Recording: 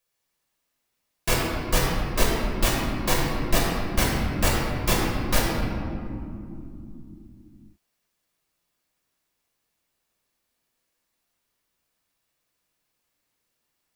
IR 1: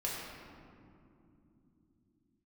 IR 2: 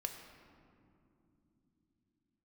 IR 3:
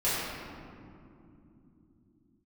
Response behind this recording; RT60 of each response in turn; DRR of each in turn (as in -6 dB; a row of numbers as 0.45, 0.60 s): 1; not exponential, not exponential, not exponential; -5.0, 4.5, -12.5 dB